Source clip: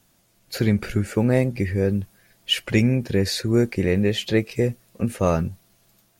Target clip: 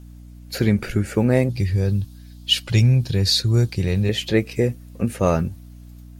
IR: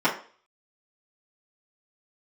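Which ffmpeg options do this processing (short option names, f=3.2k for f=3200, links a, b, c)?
-filter_complex "[0:a]asettb=1/sr,asplit=3[a][b][c];[a]atrim=end=1.494[d];[b]atrim=start=1.49:end=4.09,asetpts=PTS-STARTPTS,afade=t=in:d=0.004:c=qsin,afade=t=out:st=2.596:d=0.004:c=qsin,equalizer=f=125:t=o:w=1:g=8,equalizer=f=250:t=o:w=1:g=-9,equalizer=f=500:t=o:w=1:g=-6,equalizer=f=2k:t=o:w=1:g=-9,equalizer=f=4k:t=o:w=1:g=10[e];[c]atrim=start=4.086[f];[d][e]acrossfade=d=0.004:c1=hsin:c2=qsin[g];[g][f]acrossfade=d=0.004:c1=qsin:c2=hsin,aeval=exprs='val(0)+0.00891*(sin(2*PI*60*n/s)+sin(2*PI*2*60*n/s)/2+sin(2*PI*3*60*n/s)/3+sin(2*PI*4*60*n/s)/4+sin(2*PI*5*60*n/s)/5)':c=same,volume=1.5dB"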